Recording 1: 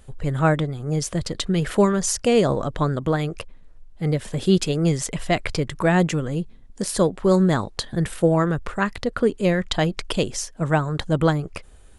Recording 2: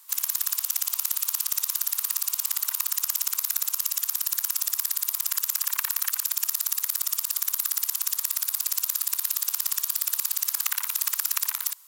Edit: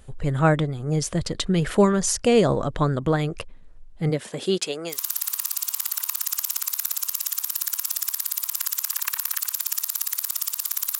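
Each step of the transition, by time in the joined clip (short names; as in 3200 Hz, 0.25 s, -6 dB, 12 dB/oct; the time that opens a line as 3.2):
recording 1
4.09–5 HPF 170 Hz -> 830 Hz
4.94 switch to recording 2 from 1.65 s, crossfade 0.12 s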